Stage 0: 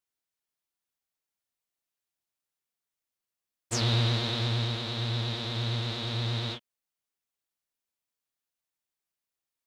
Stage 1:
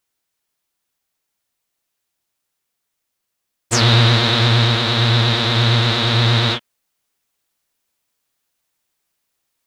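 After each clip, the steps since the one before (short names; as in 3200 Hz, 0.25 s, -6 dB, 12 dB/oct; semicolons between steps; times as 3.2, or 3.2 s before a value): dynamic EQ 1500 Hz, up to +6 dB, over -48 dBFS, Q 0.96; in parallel at +1.5 dB: vocal rider; on the sum: gain +7.5 dB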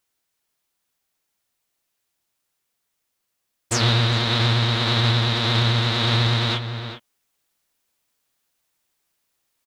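outdoor echo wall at 69 m, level -14 dB; limiter -10 dBFS, peak gain reduction 8.5 dB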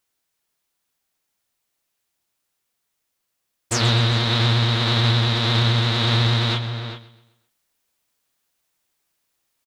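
feedback echo 0.129 s, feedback 43%, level -16 dB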